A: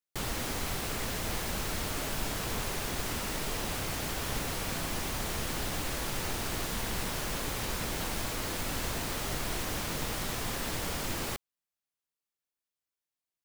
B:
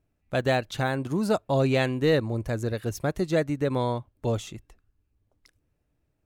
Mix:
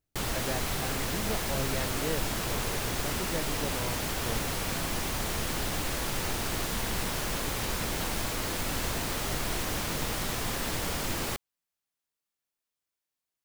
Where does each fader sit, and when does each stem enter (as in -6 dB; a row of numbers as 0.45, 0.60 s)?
+2.5, -12.5 dB; 0.00, 0.00 s